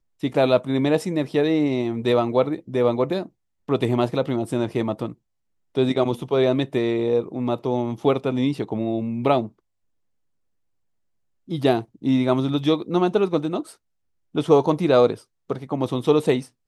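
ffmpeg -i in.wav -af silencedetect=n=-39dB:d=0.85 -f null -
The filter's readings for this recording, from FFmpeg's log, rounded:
silence_start: 9.49
silence_end: 11.48 | silence_duration: 2.00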